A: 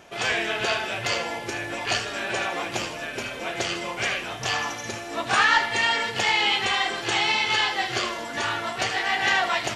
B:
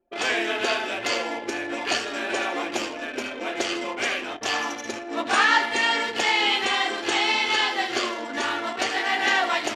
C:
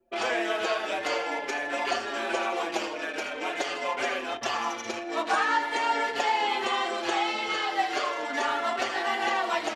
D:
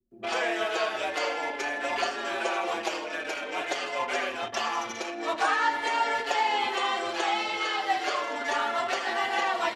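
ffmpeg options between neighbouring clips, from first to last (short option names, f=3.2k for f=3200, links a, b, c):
-af "lowshelf=f=200:t=q:w=3:g=-9.5,anlmdn=6.31"
-filter_complex "[0:a]acrossover=split=470|1300|5500[a][b][c][d];[a]acompressor=threshold=-45dB:ratio=4[e];[b]acompressor=threshold=-27dB:ratio=4[f];[c]acompressor=threshold=-38dB:ratio=4[g];[d]acompressor=threshold=-51dB:ratio=4[h];[e][f][g][h]amix=inputs=4:normalize=0,asplit=2[i][j];[j]adelay=5.5,afreqshift=-0.44[k];[i][k]amix=inputs=2:normalize=1,volume=5.5dB"
-filter_complex "[0:a]acrossover=split=270[a][b];[b]adelay=110[c];[a][c]amix=inputs=2:normalize=0"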